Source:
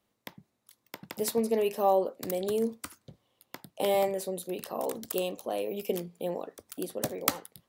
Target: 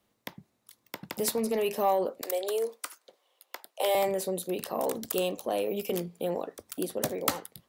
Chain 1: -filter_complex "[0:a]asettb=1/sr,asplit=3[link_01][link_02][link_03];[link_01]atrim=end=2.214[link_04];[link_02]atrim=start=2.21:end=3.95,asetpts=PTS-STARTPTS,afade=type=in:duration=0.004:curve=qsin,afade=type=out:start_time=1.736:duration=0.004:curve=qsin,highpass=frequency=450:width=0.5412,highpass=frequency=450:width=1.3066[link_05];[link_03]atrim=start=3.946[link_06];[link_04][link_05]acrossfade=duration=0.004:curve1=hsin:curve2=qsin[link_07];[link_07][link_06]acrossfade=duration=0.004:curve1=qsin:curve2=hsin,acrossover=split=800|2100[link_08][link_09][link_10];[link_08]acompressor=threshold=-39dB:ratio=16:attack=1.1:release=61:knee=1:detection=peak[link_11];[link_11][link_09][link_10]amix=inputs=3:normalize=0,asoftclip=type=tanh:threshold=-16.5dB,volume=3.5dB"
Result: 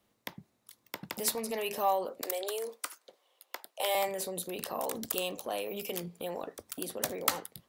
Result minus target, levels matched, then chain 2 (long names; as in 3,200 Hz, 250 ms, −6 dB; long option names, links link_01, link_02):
downward compressor: peak gain reduction +10.5 dB
-filter_complex "[0:a]asettb=1/sr,asplit=3[link_01][link_02][link_03];[link_01]atrim=end=2.214[link_04];[link_02]atrim=start=2.21:end=3.95,asetpts=PTS-STARTPTS,afade=type=in:duration=0.004:curve=qsin,afade=type=out:start_time=1.736:duration=0.004:curve=qsin,highpass=frequency=450:width=0.5412,highpass=frequency=450:width=1.3066[link_05];[link_03]atrim=start=3.946[link_06];[link_04][link_05]acrossfade=duration=0.004:curve1=hsin:curve2=qsin[link_07];[link_07][link_06]acrossfade=duration=0.004:curve1=qsin:curve2=hsin,acrossover=split=800|2100[link_08][link_09][link_10];[link_08]acompressor=threshold=-28dB:ratio=16:attack=1.1:release=61:knee=1:detection=peak[link_11];[link_11][link_09][link_10]amix=inputs=3:normalize=0,asoftclip=type=tanh:threshold=-16.5dB,volume=3.5dB"